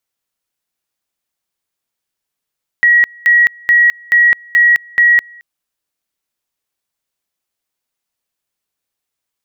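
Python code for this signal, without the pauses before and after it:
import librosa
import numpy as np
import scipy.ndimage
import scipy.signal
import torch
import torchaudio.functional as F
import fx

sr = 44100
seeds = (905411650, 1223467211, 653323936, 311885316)

y = fx.two_level_tone(sr, hz=1910.0, level_db=-5.5, drop_db=29.0, high_s=0.21, low_s=0.22, rounds=6)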